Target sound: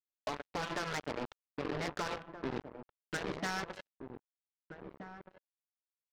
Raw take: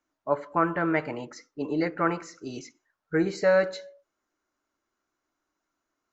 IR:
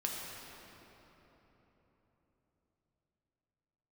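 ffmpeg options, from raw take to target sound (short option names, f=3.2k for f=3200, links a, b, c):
-filter_complex "[0:a]lowpass=1.5k,afftfilt=real='re*lt(hypot(re,im),0.251)':imag='im*lt(hypot(re,im),0.251)':win_size=1024:overlap=0.75,highpass=140,bandreject=f=60:t=h:w=6,bandreject=f=120:t=h:w=6,bandreject=f=180:t=h:w=6,bandreject=f=240:t=h:w=6,bandreject=f=300:t=h:w=6,bandreject=f=360:t=h:w=6,bandreject=f=420:t=h:w=6,acompressor=threshold=-37dB:ratio=10,aresample=11025,asoftclip=type=hard:threshold=-37dB,aresample=44100,acrusher=bits=5:mix=0:aa=0.5,asplit=2[a][b];[b]adelay=1574,volume=-9dB,highshelf=f=4k:g=-35.4[c];[a][c]amix=inputs=2:normalize=0,volume=10.5dB"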